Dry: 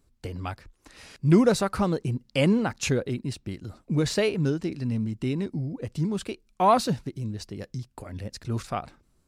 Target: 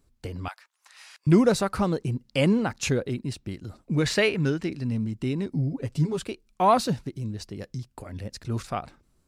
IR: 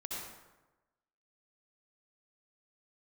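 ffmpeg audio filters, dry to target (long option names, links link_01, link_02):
-filter_complex "[0:a]asettb=1/sr,asplit=3[link_01][link_02][link_03];[link_01]atrim=end=0.484[link_04];[link_02]atrim=start=0.48:end=1.27,asetpts=PTS-STARTPTS,afade=type=in:duration=0.004:curve=qsin,afade=type=out:start_time=0.786:duration=0.004:curve=qsin,highpass=frequency=850:width=0.5412,highpass=frequency=850:width=1.3066[link_05];[link_03]atrim=start=1.266[link_06];[link_04][link_05]acrossfade=duration=0.004:curve1=hsin:curve2=qsin[link_07];[link_07][link_06]acrossfade=duration=0.004:curve1=qsin:curve2=hsin,asettb=1/sr,asplit=3[link_08][link_09][link_10];[link_08]atrim=end=3.774[link_11];[link_09]atrim=start=3.77:end=4.7,asetpts=PTS-STARTPTS,afade=type=in:duration=0.004:curve=qsin,afade=type=out:start_time=0.926:duration=0.004:curve=qsin,adynamicequalizer=threshold=0.00631:dfrequency=2000:dqfactor=0.94:tfrequency=2000:tqfactor=0.94:attack=5:release=100:ratio=0.375:range=4:mode=boostabove:tftype=bell[link_12];[link_10]atrim=start=4.696[link_13];[link_11][link_12]acrossfade=duration=0.004:curve1=hsin:curve2=qsin[link_14];[link_14][link_13]acrossfade=duration=0.004:curve1=qsin:curve2=hsin,asettb=1/sr,asplit=3[link_15][link_16][link_17];[link_15]atrim=end=5.514[link_18];[link_16]atrim=start=5.51:end=6.21,asetpts=PTS-STARTPTS,afade=type=in:duration=0.004:curve=qsin,afade=type=out:start_time=0.696:duration=0.004:curve=qsin,aecho=1:1:7.3:0.76,atrim=end_sample=30870[link_19];[link_17]atrim=start=6.206[link_20];[link_18][link_19]acrossfade=duration=0.004:curve1=hsin:curve2=qsin[link_21];[link_21][link_20]acrossfade=duration=0.004:curve1=qsin:curve2=hsin"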